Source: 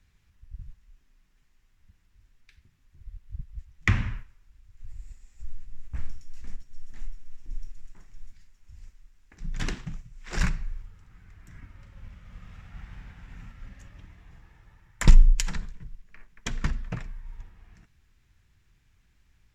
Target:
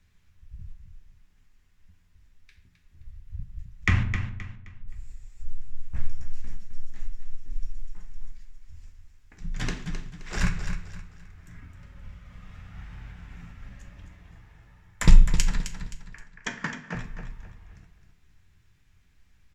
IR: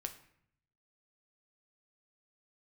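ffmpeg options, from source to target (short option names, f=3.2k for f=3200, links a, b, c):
-filter_complex "[0:a]asettb=1/sr,asplit=3[a][b][c];[a]atrim=end=4.034[d];[b]atrim=start=4.03:end=4.88,asetpts=PTS-STARTPTS,afade=t=in:d=0.004:c=qsin,afade=t=out:st=0.846:d=0.004:c=qsin,adynamicsmooth=sensitivity=2.5:basefreq=630[e];[c]atrim=start=4.876[f];[d][e]acrossfade=d=0.004:c1=hsin:c2=qsin[g];[g][f]acrossfade=d=0.004:c1=qsin:c2=hsin,asettb=1/sr,asplit=3[h][i][j];[h]atrim=end=16.034[k];[i]atrim=start=16.03:end=16.95,asetpts=PTS-STARTPTS,afade=t=in:d=0.004:c=qsin,afade=t=out:st=0.916:d=0.004:c=qsin,highpass=f=170:w=0.5412,highpass=f=170:w=1.3066,equalizer=f=890:t=q:w=4:g=5,equalizer=f=1.7k:t=q:w=4:g=9,equalizer=f=3.9k:t=q:w=4:g=-6,lowpass=f=7.1k:w=0.5412,lowpass=f=7.1k:w=1.3066[l];[j]atrim=start=16.946[m];[k][l]acrossfade=d=0.004:c1=hsin:c2=qsin[n];[n][m]acrossfade=d=0.004:c1=qsin:c2=hsin,aecho=1:1:262|524|786|1048:0.355|0.114|0.0363|0.0116[o];[1:a]atrim=start_sample=2205,asetrate=61740,aresample=44100[p];[o][p]afir=irnorm=-1:irlink=0,volume=6dB"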